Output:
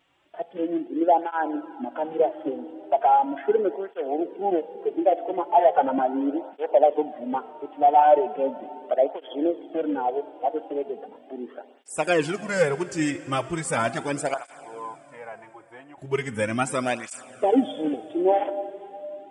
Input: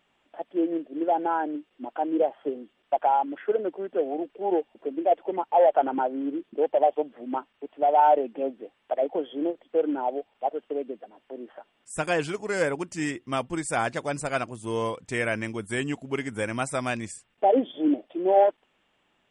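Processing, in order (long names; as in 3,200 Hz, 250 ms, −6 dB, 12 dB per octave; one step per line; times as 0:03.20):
0:14.34–0:15.98: resonant band-pass 840 Hz, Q 5.3
on a send at −14 dB: convolution reverb RT60 3.4 s, pre-delay 25 ms
on the sum: through-zero flanger with one copy inverted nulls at 0.38 Hz, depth 5.1 ms
level +5.5 dB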